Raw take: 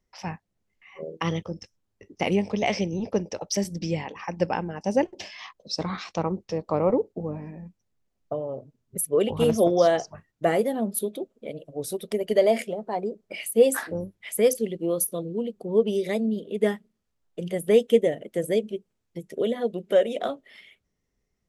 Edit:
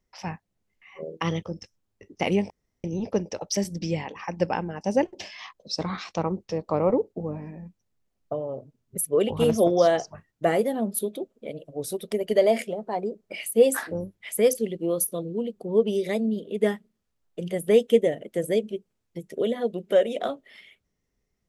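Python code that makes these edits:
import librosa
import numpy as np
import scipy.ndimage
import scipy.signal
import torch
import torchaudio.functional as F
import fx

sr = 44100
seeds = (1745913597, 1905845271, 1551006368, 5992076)

y = fx.edit(x, sr, fx.room_tone_fill(start_s=2.5, length_s=0.34), tone=tone)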